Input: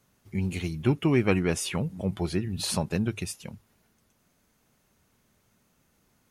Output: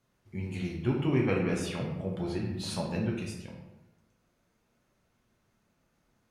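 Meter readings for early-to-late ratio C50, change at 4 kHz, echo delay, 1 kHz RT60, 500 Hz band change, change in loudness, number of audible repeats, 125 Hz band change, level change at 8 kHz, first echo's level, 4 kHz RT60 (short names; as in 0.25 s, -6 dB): 2.5 dB, -6.5 dB, none, 0.95 s, -3.0 dB, -4.0 dB, none, -3.5 dB, -10.5 dB, none, 0.60 s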